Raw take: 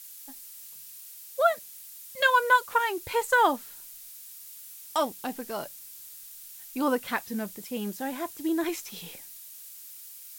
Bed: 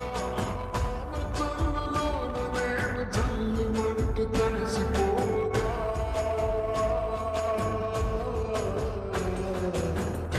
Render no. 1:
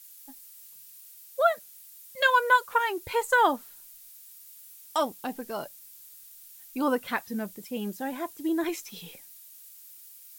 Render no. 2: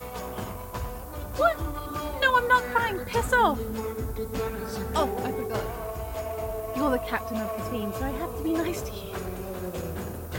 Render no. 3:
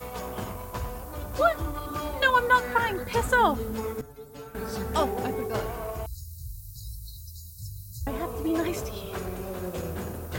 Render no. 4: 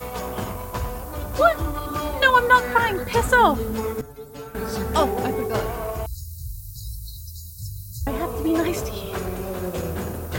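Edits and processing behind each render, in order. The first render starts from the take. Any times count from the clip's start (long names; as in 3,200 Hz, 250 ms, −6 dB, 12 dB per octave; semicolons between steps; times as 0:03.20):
broadband denoise 6 dB, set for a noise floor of −46 dBFS
mix in bed −4.5 dB
0:04.01–0:04.55: stiff-string resonator 140 Hz, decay 0.26 s, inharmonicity 0.002; 0:06.06–0:08.07: linear-phase brick-wall band-stop 160–3,800 Hz
level +5.5 dB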